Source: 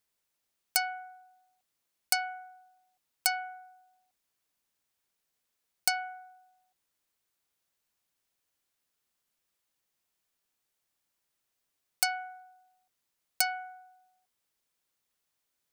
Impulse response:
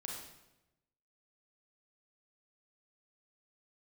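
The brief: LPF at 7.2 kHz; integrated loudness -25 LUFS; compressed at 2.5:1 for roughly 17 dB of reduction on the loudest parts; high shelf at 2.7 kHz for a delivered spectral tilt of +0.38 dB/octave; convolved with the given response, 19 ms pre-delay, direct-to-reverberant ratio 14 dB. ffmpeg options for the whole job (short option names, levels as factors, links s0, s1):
-filter_complex "[0:a]lowpass=7200,highshelf=f=2700:g=4.5,acompressor=threshold=0.00316:ratio=2.5,asplit=2[s0][s1];[1:a]atrim=start_sample=2205,adelay=19[s2];[s1][s2]afir=irnorm=-1:irlink=0,volume=0.237[s3];[s0][s3]amix=inputs=2:normalize=0,volume=15"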